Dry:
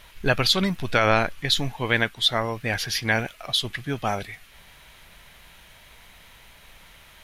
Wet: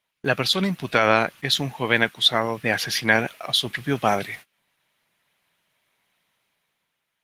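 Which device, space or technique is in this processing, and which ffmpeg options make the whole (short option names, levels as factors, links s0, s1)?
video call: -filter_complex "[0:a]asplit=3[s0][s1][s2];[s0]afade=t=out:st=2.62:d=0.02[s3];[s1]equalizer=f=780:w=0.35:g=2,afade=t=in:st=2.62:d=0.02,afade=t=out:st=3.47:d=0.02[s4];[s2]afade=t=in:st=3.47:d=0.02[s5];[s3][s4][s5]amix=inputs=3:normalize=0,highpass=f=130:w=0.5412,highpass=f=130:w=1.3066,dynaudnorm=f=110:g=13:m=2.51,agate=range=0.0501:threshold=0.0126:ratio=16:detection=peak" -ar 48000 -c:a libopus -b:a 20k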